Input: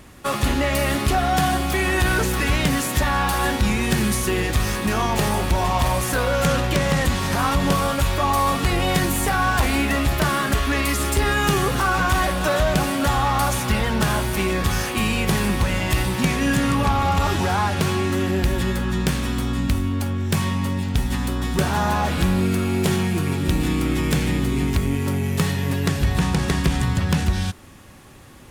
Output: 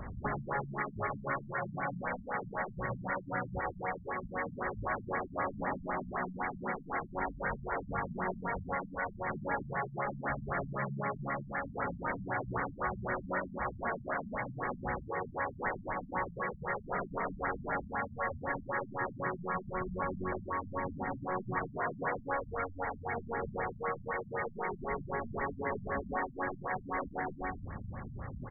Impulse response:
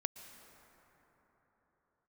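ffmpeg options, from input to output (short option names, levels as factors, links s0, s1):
-filter_complex "[0:a]afftfilt=real='re*lt(hypot(re,im),0.224)':imag='im*lt(hypot(re,im),0.224)':win_size=1024:overlap=0.75,equalizer=f=320:w=2.2:g=-9,acrossover=split=330[s0][s1];[s1]alimiter=limit=0.126:level=0:latency=1:release=70[s2];[s0][s2]amix=inputs=2:normalize=0,acompressor=threshold=0.0224:ratio=6,aecho=1:1:87.46|122.4:0.282|0.447,afftfilt=real='re*lt(b*sr/1024,220*pow(2300/220,0.5+0.5*sin(2*PI*3.9*pts/sr)))':imag='im*lt(b*sr/1024,220*pow(2300/220,0.5+0.5*sin(2*PI*3.9*pts/sr)))':win_size=1024:overlap=0.75,volume=1.68"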